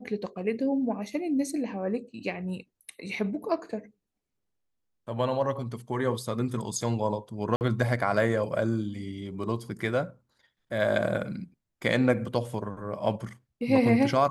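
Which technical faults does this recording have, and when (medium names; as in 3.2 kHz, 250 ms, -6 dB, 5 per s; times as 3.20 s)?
7.56–7.61 s: dropout 49 ms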